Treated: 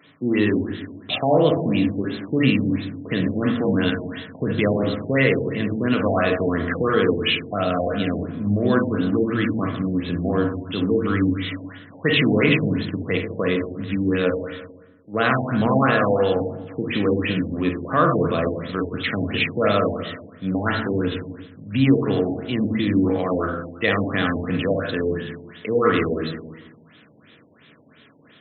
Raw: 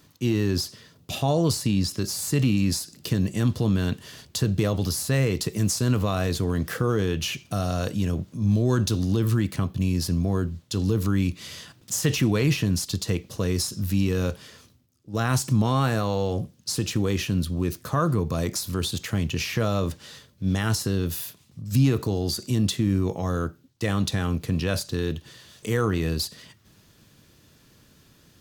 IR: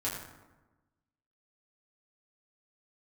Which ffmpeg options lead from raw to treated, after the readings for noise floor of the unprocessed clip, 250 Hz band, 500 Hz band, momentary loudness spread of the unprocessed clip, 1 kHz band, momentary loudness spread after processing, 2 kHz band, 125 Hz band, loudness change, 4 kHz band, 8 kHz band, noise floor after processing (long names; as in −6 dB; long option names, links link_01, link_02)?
−58 dBFS, +4.5 dB, +8.0 dB, 7 LU, +7.0 dB, 10 LU, +9.5 dB, −2.5 dB, +3.5 dB, +2.0 dB, below −40 dB, −52 dBFS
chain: -filter_complex "[0:a]highpass=280,equalizer=frequency=360:width_type=q:width=4:gain=-5,equalizer=frequency=880:width_type=q:width=4:gain=-7,equalizer=frequency=2100:width_type=q:width=4:gain=6,equalizer=frequency=3300:width_type=q:width=4:gain=5,lowpass=frequency=9700:width=0.5412,lowpass=frequency=9700:width=1.3066,asplit=2[link_01][link_02];[1:a]atrim=start_sample=2205,highshelf=frequency=4700:gain=-11.5,adelay=38[link_03];[link_02][link_03]afir=irnorm=-1:irlink=0,volume=-5.5dB[link_04];[link_01][link_04]amix=inputs=2:normalize=0,afftfilt=real='re*lt(b*sr/1024,910*pow(4200/910,0.5+0.5*sin(2*PI*2.9*pts/sr)))':imag='im*lt(b*sr/1024,910*pow(4200/910,0.5+0.5*sin(2*PI*2.9*pts/sr)))':win_size=1024:overlap=0.75,volume=7.5dB"